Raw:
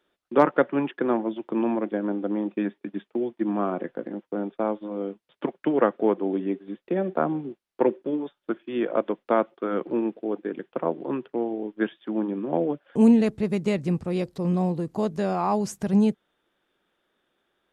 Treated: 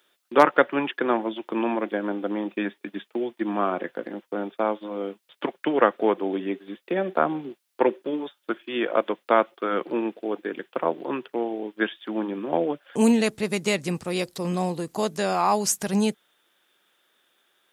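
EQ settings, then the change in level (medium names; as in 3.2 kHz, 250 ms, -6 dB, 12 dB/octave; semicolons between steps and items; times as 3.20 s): tilt EQ +3.5 dB/octave; +4.5 dB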